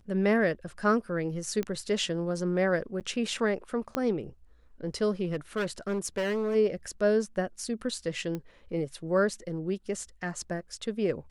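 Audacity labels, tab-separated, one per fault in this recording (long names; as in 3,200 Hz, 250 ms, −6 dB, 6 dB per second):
1.630000	1.630000	click −19 dBFS
3.000000	3.010000	drop-out 8.3 ms
3.950000	3.950000	click −15 dBFS
5.240000	6.560000	clipping −26 dBFS
8.350000	8.350000	click −22 dBFS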